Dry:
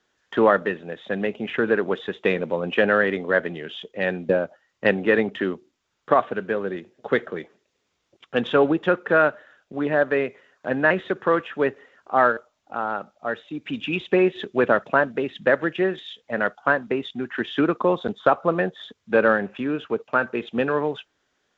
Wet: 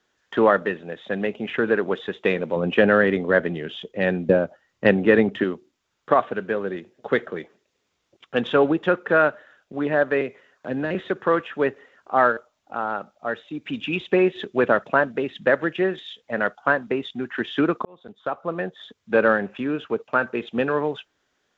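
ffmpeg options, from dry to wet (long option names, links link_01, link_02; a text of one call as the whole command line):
ffmpeg -i in.wav -filter_complex "[0:a]asettb=1/sr,asplit=3[link_01][link_02][link_03];[link_01]atrim=end=2.564[link_04];[link_02]atrim=start=2.56:end=5.44,asetpts=PTS-STARTPTS,afade=type=in:duration=0.004:curve=qsin,afade=type=out:start_time=2.876:duration=0.004:curve=qsin,lowshelf=frequency=350:gain=7.5[link_05];[link_03]atrim=start=5.436[link_06];[link_04][link_05]acrossfade=duration=0.004:curve1=hsin:curve2=qsin[link_07];[link_07][link_06]acrossfade=duration=0.004:curve1=qsin:curve2=hsin,asettb=1/sr,asplit=3[link_08][link_09][link_10];[link_08]atrim=end=10.214[link_11];[link_09]atrim=start=10.21:end=10.95,asetpts=PTS-STARTPTS,afade=type=in:duration=0.004:curve=qsin,afade=type=out:start_time=0.736:duration=0.004:curve=qsin,acrossover=split=470|3000[link_12][link_13][link_14];[link_13]acompressor=threshold=-33dB:ratio=6:attack=3.2:release=140:knee=2.83:detection=peak[link_15];[link_12][link_15][link_14]amix=inputs=3:normalize=0[link_16];[link_10]atrim=start=10.946[link_17];[link_11][link_16]acrossfade=duration=0.004:curve1=hsin:curve2=qsin[link_18];[link_18][link_17]acrossfade=duration=0.004:curve1=qsin:curve2=hsin,asplit=2[link_19][link_20];[link_19]atrim=end=17.85,asetpts=PTS-STARTPTS,afade=type=out:start_time=17.846:duration=0.004:curve=hsin[link_21];[link_20]atrim=start=17.85,asetpts=PTS-STARTPTS,afade=type=in:duration=1.34[link_22];[link_21][link_22]concat=n=2:v=0:a=1" out.wav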